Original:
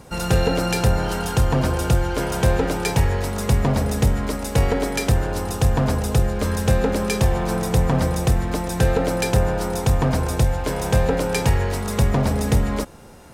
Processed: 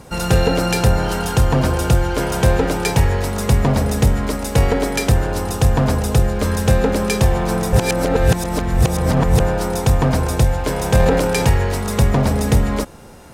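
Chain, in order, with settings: 7.73–9.4 reverse; 10.95–11.45 transient shaper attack -1 dB, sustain +8 dB; gain +3.5 dB; SBC 192 kbps 44100 Hz

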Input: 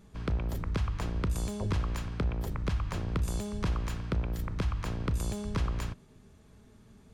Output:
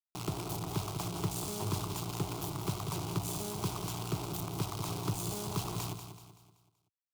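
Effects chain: bit-crush 6-bit; HPF 78 Hz 24 dB/oct; fixed phaser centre 350 Hz, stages 8; on a send: feedback echo 0.19 s, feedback 42%, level -9 dB; on the sum: added harmonics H 8 -26 dB, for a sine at -20 dBFS

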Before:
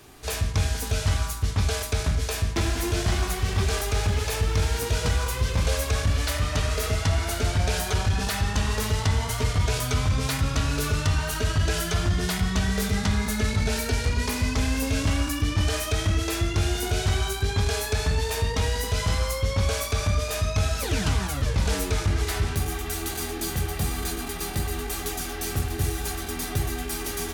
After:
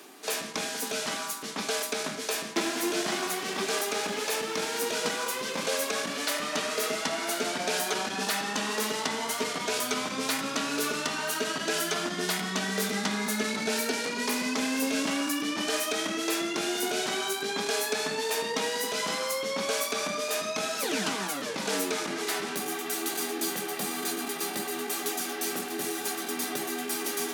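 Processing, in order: steep high-pass 210 Hz 36 dB/oct; reverse; upward compressor, threshold -37 dBFS; reverse

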